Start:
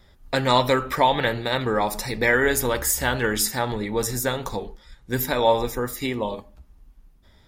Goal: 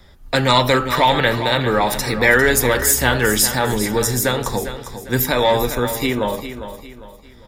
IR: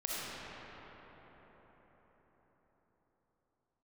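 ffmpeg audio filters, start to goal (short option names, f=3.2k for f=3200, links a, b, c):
-filter_complex "[0:a]acrossover=split=200|1200[a][b][c];[b]asoftclip=type=tanh:threshold=-20dB[d];[a][d][c]amix=inputs=3:normalize=0,aecho=1:1:402|804|1206|1608:0.282|0.104|0.0386|0.0143,volume=7dB"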